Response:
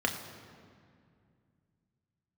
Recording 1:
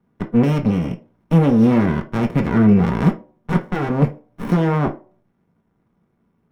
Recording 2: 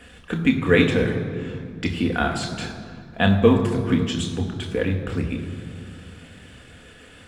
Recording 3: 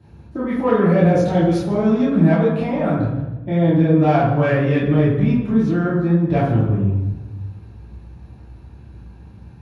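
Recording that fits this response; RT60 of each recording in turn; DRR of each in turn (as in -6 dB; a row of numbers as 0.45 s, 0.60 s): 2; 0.40 s, 2.3 s, 1.2 s; 3.5 dB, 2.0 dB, -10.0 dB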